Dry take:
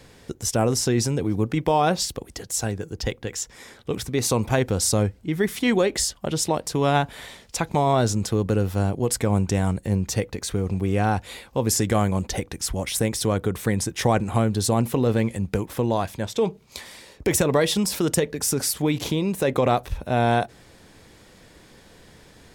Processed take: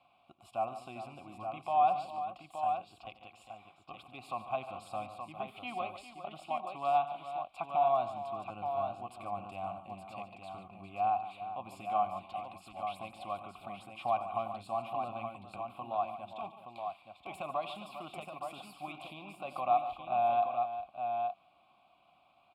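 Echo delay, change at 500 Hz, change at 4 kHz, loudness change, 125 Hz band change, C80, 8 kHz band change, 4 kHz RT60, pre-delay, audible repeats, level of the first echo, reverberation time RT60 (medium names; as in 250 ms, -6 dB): 90 ms, -13.5 dB, -21.5 dB, -13.0 dB, -29.5 dB, no reverb, under -35 dB, no reverb, no reverb, 4, -15.0 dB, no reverb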